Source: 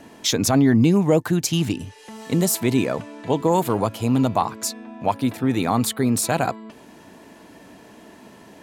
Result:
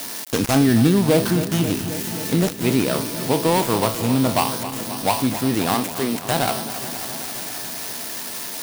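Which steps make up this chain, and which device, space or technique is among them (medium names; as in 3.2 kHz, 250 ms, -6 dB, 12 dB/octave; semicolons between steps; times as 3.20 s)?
spectral sustain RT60 0.33 s; budget class-D amplifier (dead-time distortion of 0.2 ms; zero-crossing glitches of -12.5 dBFS); 5.74–6.28 s: high-pass 260 Hz; bit-crushed delay 267 ms, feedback 80%, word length 7-bit, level -12.5 dB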